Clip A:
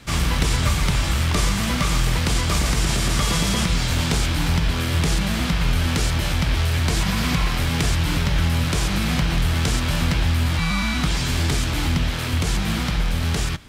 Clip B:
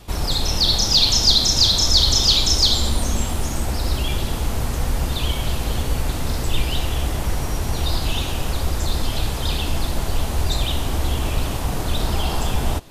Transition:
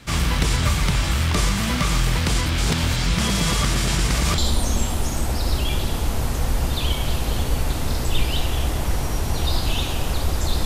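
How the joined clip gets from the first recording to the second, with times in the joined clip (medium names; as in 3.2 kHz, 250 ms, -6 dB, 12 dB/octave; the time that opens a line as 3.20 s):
clip A
2.46–4.38 s: reverse
4.38 s: go over to clip B from 2.77 s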